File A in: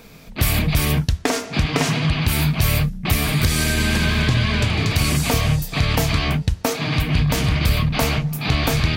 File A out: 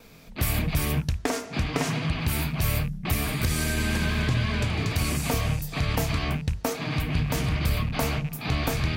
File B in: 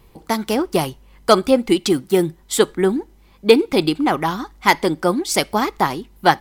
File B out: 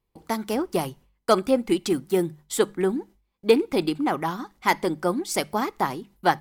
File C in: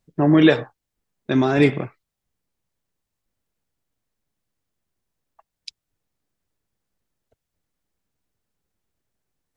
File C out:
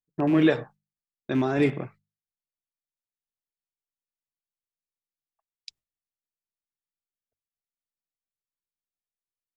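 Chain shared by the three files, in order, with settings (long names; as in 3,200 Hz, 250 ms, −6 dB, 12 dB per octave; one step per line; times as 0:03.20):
loose part that buzzes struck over −21 dBFS, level −23 dBFS
noise gate with hold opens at −37 dBFS
mains-hum notches 50/100/150/200 Hz
dynamic equaliser 3,700 Hz, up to −4 dB, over −37 dBFS, Q 0.89
level −6 dB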